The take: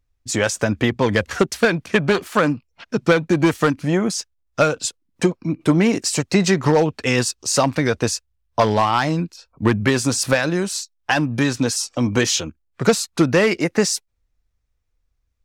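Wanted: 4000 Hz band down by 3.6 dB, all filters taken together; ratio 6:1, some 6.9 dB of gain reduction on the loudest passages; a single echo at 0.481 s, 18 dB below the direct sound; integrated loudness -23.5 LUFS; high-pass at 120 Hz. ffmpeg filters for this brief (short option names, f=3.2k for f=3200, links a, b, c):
-af "highpass=120,equalizer=f=4k:t=o:g=-5,acompressor=threshold=-18dB:ratio=6,aecho=1:1:481:0.126,volume=1dB"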